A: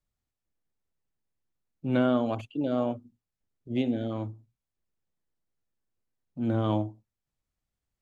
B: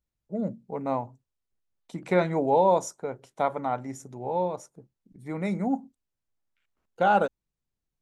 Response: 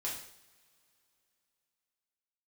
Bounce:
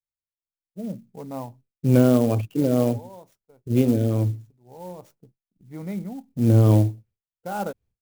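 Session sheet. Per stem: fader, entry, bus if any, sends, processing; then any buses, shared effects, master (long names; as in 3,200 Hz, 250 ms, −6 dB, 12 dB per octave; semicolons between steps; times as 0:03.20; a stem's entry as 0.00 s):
−1.5 dB, 0.00 s, no send, parametric band 110 Hz +6.5 dB 1.2 octaves; hollow resonant body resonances 450/2,400 Hz, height 10 dB, ringing for 20 ms
−8.5 dB, 0.45 s, no send, automatic ducking −17 dB, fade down 0.35 s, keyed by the first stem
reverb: not used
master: downward expander −55 dBFS; low-shelf EQ 300 Hz +11 dB; converter with an unsteady clock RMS 0.032 ms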